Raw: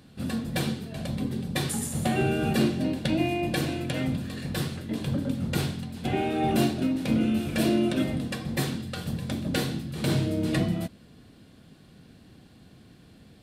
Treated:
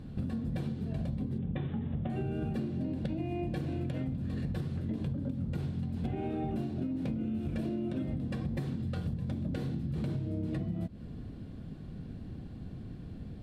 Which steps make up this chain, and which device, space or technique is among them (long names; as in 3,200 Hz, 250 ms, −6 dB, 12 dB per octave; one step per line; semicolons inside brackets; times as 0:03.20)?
spectral tilt −3.5 dB per octave
serial compression, peaks first (downward compressor, threshold −27 dBFS, peak gain reduction 15 dB; downward compressor 3 to 1, threshold −32 dBFS, peak gain reduction 6.5 dB)
0:01.38–0:02.10: Butterworth low-pass 3,600 Hz 96 dB per octave